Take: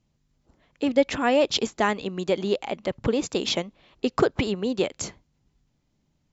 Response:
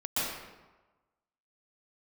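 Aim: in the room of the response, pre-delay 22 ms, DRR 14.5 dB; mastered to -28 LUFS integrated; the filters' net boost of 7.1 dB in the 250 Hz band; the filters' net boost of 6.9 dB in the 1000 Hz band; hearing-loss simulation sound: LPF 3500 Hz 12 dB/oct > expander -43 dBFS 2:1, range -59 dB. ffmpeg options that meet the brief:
-filter_complex "[0:a]equalizer=f=250:t=o:g=8,equalizer=f=1k:t=o:g=8.5,asplit=2[a][b];[1:a]atrim=start_sample=2205,adelay=22[c];[b][c]afir=irnorm=-1:irlink=0,volume=-23dB[d];[a][d]amix=inputs=2:normalize=0,lowpass=3.5k,agate=range=-59dB:threshold=-43dB:ratio=2,volume=-7.5dB"

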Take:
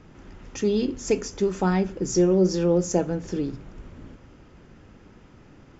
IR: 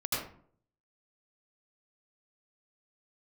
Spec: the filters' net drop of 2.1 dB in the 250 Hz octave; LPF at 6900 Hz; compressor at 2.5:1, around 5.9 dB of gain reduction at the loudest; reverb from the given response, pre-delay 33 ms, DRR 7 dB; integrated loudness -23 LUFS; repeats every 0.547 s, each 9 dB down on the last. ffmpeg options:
-filter_complex "[0:a]lowpass=6.9k,equalizer=f=250:t=o:g=-3.5,acompressor=threshold=-26dB:ratio=2.5,aecho=1:1:547|1094|1641|2188:0.355|0.124|0.0435|0.0152,asplit=2[a][b];[1:a]atrim=start_sample=2205,adelay=33[c];[b][c]afir=irnorm=-1:irlink=0,volume=-13.5dB[d];[a][d]amix=inputs=2:normalize=0,volume=6.5dB"

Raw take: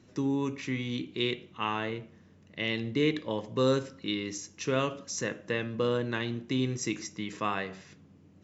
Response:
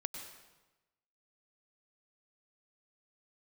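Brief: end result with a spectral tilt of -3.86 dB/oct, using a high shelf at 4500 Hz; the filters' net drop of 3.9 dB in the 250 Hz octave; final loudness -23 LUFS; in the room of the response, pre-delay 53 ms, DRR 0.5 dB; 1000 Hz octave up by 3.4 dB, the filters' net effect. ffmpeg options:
-filter_complex "[0:a]equalizer=f=250:t=o:g=-5,equalizer=f=1k:t=o:g=4,highshelf=f=4.5k:g=4.5,asplit=2[a][b];[1:a]atrim=start_sample=2205,adelay=53[c];[b][c]afir=irnorm=-1:irlink=0,volume=0dB[d];[a][d]amix=inputs=2:normalize=0,volume=6.5dB"

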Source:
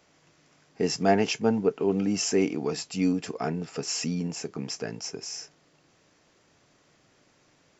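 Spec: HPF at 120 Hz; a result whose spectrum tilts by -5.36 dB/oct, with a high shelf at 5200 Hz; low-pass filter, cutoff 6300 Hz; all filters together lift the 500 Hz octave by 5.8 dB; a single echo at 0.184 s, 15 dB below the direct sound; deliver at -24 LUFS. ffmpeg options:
-af "highpass=120,lowpass=6.3k,equalizer=f=500:t=o:g=7.5,highshelf=f=5.2k:g=-4,aecho=1:1:184:0.178,volume=0.5dB"

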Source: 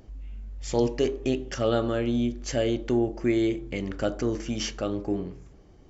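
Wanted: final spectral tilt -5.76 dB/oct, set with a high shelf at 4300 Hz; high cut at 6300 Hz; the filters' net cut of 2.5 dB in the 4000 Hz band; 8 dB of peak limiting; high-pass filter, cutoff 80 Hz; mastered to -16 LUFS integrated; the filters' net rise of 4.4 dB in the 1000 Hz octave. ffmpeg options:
-af "highpass=80,lowpass=6.3k,equalizer=f=1k:t=o:g=6.5,equalizer=f=4k:t=o:g=-6,highshelf=f=4.3k:g=4,volume=13dB,alimiter=limit=-4dB:level=0:latency=1"

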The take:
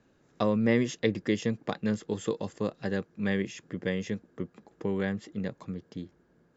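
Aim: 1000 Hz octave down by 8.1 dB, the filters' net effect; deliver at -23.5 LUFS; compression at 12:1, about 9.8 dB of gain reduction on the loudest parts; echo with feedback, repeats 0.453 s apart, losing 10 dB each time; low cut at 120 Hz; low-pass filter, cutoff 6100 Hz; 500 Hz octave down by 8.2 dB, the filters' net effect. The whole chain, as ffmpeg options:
-af "highpass=120,lowpass=6.1k,equalizer=f=500:t=o:g=-8.5,equalizer=f=1k:t=o:g=-7.5,acompressor=threshold=-34dB:ratio=12,aecho=1:1:453|906|1359|1812:0.316|0.101|0.0324|0.0104,volume=17.5dB"

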